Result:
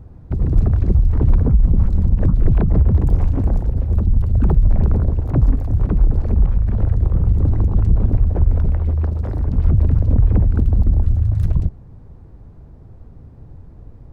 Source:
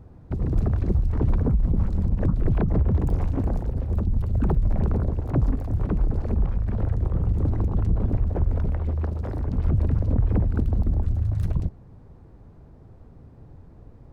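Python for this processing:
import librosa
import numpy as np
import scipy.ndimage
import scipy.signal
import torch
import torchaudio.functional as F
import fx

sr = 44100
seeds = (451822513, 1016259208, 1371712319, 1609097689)

y = fx.low_shelf(x, sr, hz=130.0, db=7.5)
y = y * librosa.db_to_amplitude(2.0)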